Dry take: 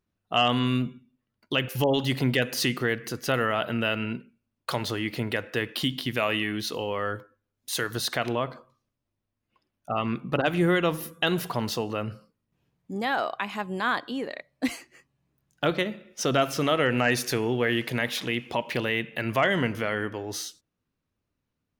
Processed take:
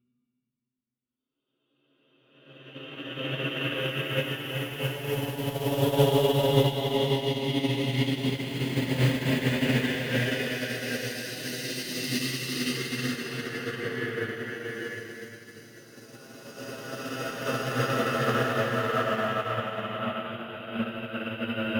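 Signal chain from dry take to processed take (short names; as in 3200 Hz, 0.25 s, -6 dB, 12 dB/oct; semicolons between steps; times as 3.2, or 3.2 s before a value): phase scrambler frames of 0.2 s; in parallel at -4 dB: wrapped overs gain 14 dB; on the sum: Paulstretch 7.9×, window 0.50 s, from 1.08; upward expander 2.5:1, over -35 dBFS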